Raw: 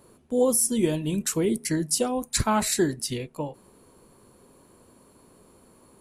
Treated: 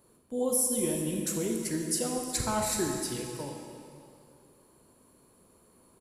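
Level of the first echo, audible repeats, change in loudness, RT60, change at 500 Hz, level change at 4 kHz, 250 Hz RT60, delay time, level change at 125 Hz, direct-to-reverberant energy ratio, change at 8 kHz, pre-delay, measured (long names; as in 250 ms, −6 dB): −15.0 dB, 1, −5.0 dB, 2.4 s, −6.0 dB, −5.5 dB, 2.4 s, 362 ms, −6.5 dB, 1.5 dB, −3.5 dB, 28 ms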